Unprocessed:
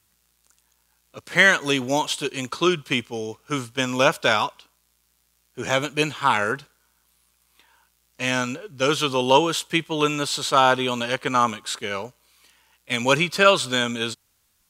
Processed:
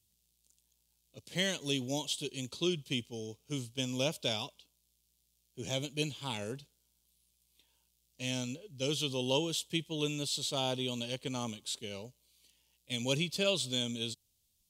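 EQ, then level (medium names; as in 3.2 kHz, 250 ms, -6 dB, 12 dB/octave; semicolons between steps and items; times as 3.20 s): FFT filter 130 Hz 0 dB, 670 Hz -9 dB, 1.4 kHz -25 dB, 3.2 kHz -2 dB; -6.5 dB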